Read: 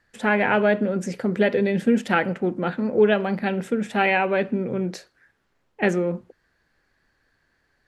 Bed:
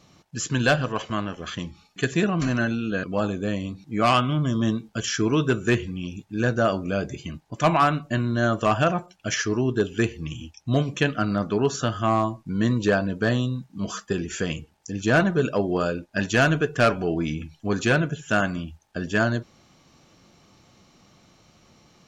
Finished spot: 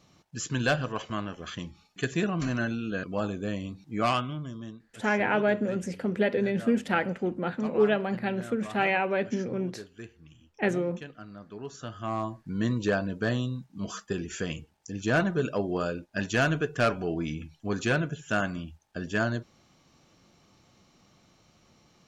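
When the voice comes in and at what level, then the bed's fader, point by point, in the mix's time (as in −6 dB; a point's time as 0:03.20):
4.80 s, −5.5 dB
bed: 0:04.05 −5.5 dB
0:04.80 −21 dB
0:11.41 −21 dB
0:12.43 −5.5 dB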